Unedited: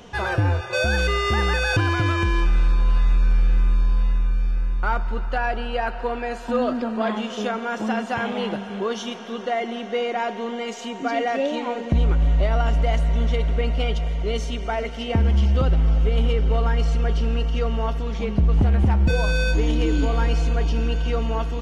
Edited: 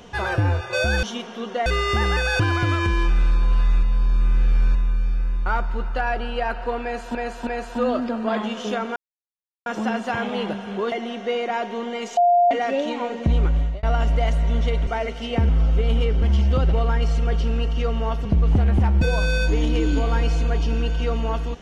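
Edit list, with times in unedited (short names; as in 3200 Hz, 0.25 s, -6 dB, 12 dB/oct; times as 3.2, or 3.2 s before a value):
3.2–4.12 reverse
6.2–6.52 loop, 3 plays
7.69 insert silence 0.70 s
8.95–9.58 move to 1.03
10.83–11.17 bleep 702 Hz -12.5 dBFS
12.08–12.49 fade out equal-power
13.53–14.64 cut
15.26–15.77 move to 16.5
18.02–18.31 cut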